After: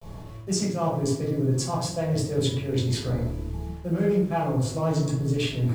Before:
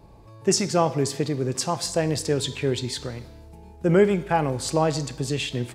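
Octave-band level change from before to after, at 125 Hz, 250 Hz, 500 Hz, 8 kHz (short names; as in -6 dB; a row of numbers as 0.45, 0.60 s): +3.0, -0.5, -4.0, -5.5 dB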